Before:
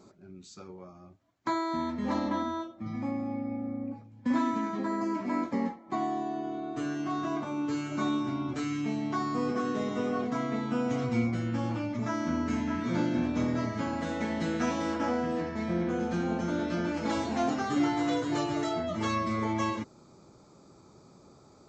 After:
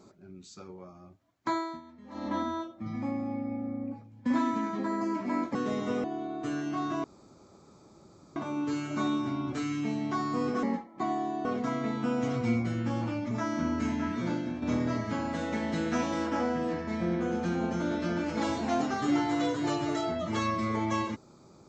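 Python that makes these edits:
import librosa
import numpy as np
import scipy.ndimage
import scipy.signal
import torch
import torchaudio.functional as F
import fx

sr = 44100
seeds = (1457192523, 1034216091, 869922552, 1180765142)

y = fx.edit(x, sr, fx.fade_down_up(start_s=1.55, length_s=0.82, db=-18.5, fade_s=0.26),
    fx.swap(start_s=5.55, length_s=0.82, other_s=9.64, other_length_s=0.49),
    fx.insert_room_tone(at_s=7.37, length_s=1.32),
    fx.fade_out_to(start_s=12.75, length_s=0.55, floor_db=-9.0), tone=tone)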